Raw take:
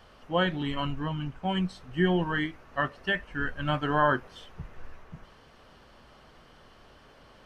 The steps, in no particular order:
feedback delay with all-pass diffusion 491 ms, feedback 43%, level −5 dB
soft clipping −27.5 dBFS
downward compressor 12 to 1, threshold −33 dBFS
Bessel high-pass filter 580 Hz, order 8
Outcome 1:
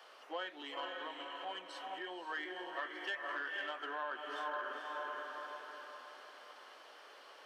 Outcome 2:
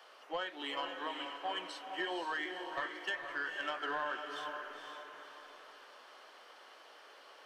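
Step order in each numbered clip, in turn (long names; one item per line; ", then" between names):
feedback delay with all-pass diffusion, then downward compressor, then soft clipping, then Bessel high-pass filter
Bessel high-pass filter, then downward compressor, then soft clipping, then feedback delay with all-pass diffusion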